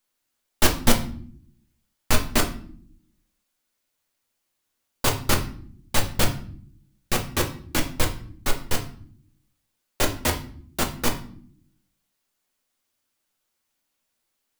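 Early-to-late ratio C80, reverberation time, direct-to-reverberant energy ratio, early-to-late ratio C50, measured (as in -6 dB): 15.5 dB, not exponential, 2.0 dB, 11.0 dB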